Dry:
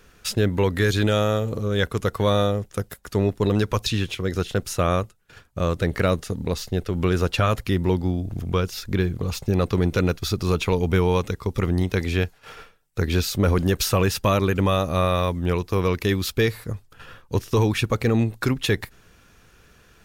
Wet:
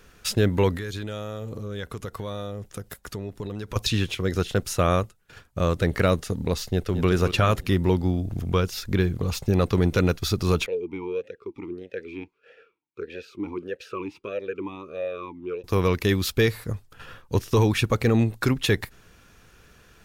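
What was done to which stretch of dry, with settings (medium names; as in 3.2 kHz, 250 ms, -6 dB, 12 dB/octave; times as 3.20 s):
0.76–3.76 s: compression 4:1, threshold -31 dBFS
6.66–7.09 s: echo throw 220 ms, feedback 50%, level -10 dB
10.66–15.64 s: talking filter e-u 1.6 Hz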